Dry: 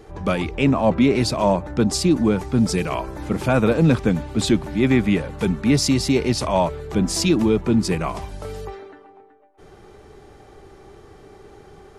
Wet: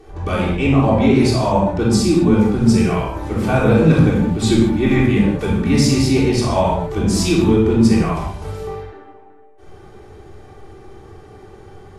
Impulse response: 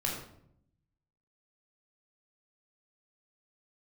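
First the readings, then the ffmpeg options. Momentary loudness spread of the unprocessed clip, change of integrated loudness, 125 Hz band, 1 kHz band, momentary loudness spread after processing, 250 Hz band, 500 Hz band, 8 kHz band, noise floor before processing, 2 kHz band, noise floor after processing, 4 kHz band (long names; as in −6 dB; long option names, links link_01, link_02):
9 LU, +4.5 dB, +6.0 dB, +3.5 dB, 9 LU, +4.5 dB, +3.5 dB, +1.0 dB, −47 dBFS, +3.0 dB, −43 dBFS, +1.5 dB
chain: -filter_complex "[1:a]atrim=start_sample=2205,atrim=end_sample=6615,asetrate=29106,aresample=44100[link_01];[0:a][link_01]afir=irnorm=-1:irlink=0,volume=-5dB"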